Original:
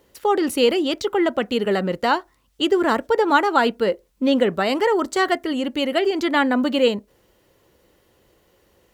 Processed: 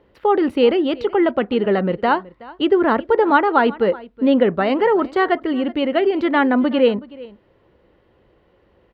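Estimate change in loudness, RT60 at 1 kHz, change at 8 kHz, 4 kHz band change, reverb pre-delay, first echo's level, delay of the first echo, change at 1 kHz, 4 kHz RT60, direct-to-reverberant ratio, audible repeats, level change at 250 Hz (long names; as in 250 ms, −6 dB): +2.5 dB, no reverb audible, below −20 dB, −4.0 dB, no reverb audible, −20.5 dB, 373 ms, +2.0 dB, no reverb audible, no reverb audible, 1, +3.5 dB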